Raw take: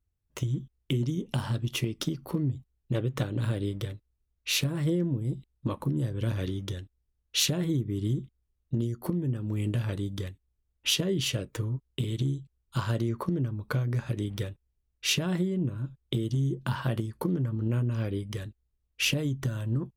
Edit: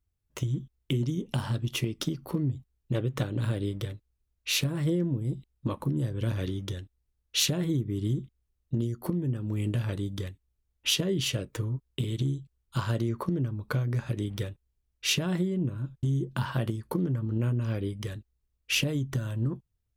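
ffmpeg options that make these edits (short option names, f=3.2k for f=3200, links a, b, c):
-filter_complex "[0:a]asplit=2[a][b];[a]atrim=end=16.032[c];[b]atrim=start=16.328[d];[c][d]acrossfade=d=0.004:c1=hsin:c2=hsin"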